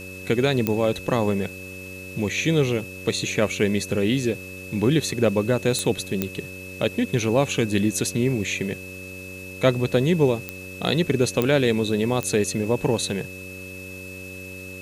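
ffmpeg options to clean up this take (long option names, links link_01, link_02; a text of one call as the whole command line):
ffmpeg -i in.wav -af "adeclick=threshold=4,bandreject=frequency=93.5:width_type=h:width=4,bandreject=frequency=187:width_type=h:width=4,bandreject=frequency=280.5:width_type=h:width=4,bandreject=frequency=374:width_type=h:width=4,bandreject=frequency=467.5:width_type=h:width=4,bandreject=frequency=561:width_type=h:width=4,bandreject=frequency=2600:width=30,afwtdn=0.0045" out.wav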